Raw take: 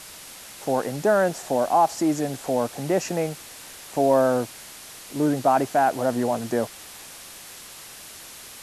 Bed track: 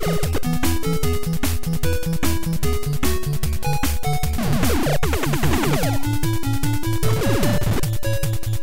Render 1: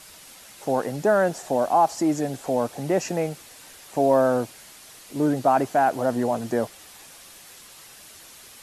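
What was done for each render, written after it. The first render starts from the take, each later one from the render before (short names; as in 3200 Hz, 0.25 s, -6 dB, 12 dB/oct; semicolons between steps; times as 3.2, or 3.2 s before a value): denoiser 6 dB, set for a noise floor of -43 dBFS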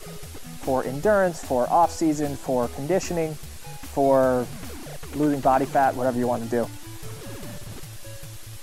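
add bed track -18.5 dB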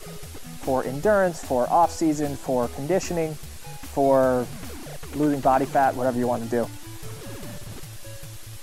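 nothing audible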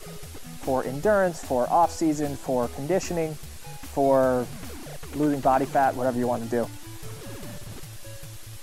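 gain -1.5 dB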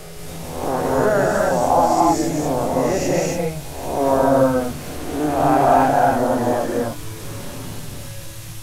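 spectral swells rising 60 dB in 0.99 s; non-linear reverb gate 0.31 s rising, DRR -2.5 dB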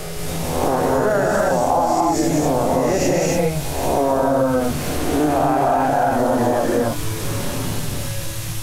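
in parallel at +2.5 dB: limiter -12.5 dBFS, peak gain reduction 10 dB; on the sum: compressor, threshold -14 dBFS, peak gain reduction 8.5 dB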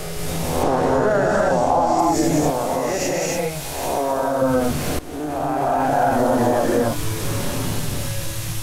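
0.63–1.99 air absorption 52 m; 2.5–4.42 low shelf 490 Hz -8.5 dB; 4.99–6.04 fade in, from -16.5 dB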